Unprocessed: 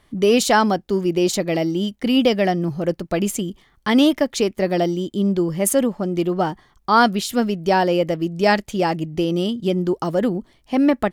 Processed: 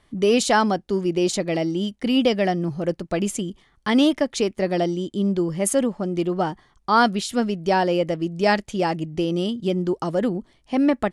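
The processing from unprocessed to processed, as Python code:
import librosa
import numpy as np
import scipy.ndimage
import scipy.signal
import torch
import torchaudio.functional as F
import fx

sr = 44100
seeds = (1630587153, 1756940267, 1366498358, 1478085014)

y = scipy.signal.sosfilt(scipy.signal.butter(8, 11000.0, 'lowpass', fs=sr, output='sos'), x)
y = y * 10.0 ** (-2.5 / 20.0)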